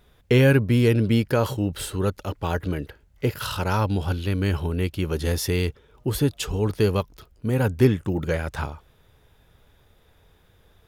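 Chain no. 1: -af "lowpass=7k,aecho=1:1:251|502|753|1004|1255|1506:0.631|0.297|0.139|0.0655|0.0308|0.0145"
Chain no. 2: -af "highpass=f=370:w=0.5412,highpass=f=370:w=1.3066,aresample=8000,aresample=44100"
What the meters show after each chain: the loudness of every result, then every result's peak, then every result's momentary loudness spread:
-22.0, -29.0 LUFS; -5.0, -10.0 dBFS; 10, 11 LU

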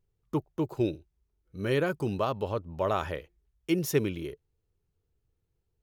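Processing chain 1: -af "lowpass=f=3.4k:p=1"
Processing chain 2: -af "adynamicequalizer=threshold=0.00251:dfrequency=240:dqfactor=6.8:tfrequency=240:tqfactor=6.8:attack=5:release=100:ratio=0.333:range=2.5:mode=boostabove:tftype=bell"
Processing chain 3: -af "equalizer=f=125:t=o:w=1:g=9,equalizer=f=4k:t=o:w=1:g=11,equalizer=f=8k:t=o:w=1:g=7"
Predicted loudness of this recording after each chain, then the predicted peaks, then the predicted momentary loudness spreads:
-31.5, -31.0, -28.0 LUFS; -14.0, -13.0, -9.5 dBFS; 13, 13, 13 LU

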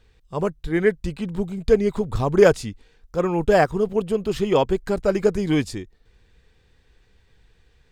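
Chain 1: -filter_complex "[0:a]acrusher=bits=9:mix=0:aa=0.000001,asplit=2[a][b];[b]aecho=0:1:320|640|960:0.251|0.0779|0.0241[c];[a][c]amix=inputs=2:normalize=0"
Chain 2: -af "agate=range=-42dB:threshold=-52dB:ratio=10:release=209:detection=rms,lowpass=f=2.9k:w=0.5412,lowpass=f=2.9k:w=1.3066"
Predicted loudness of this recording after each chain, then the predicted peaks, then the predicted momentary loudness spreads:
-21.5, -21.5 LUFS; -2.5, -2.5 dBFS; 12, 12 LU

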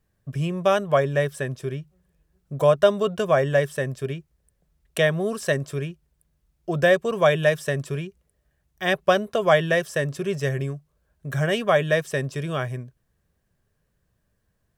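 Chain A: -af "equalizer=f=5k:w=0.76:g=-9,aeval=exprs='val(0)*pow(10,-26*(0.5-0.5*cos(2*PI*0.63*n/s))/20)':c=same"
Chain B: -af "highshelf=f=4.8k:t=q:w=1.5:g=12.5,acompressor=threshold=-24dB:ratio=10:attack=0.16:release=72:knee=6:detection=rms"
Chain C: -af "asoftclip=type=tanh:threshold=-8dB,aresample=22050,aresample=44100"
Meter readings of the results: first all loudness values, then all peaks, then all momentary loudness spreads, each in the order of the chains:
-29.5, -32.0, -24.0 LUFS; -6.0, -19.0, -9.0 dBFS; 22, 8, 12 LU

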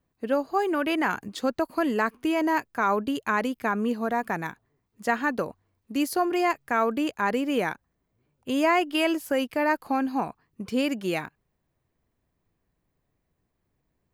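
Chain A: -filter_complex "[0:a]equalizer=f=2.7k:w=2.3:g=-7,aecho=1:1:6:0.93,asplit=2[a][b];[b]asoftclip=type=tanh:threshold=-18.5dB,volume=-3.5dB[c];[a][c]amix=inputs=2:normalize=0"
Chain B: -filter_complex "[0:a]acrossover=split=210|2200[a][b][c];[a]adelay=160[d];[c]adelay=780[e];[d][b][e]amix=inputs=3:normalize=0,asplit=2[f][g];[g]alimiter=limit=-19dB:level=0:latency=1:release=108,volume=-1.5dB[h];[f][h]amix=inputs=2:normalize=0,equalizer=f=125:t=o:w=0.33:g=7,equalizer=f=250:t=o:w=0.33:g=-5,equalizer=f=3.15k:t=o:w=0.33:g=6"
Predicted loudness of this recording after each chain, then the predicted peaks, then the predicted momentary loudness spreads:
-21.0, -24.5 LUFS; -5.0, -8.0 dBFS; 10, 10 LU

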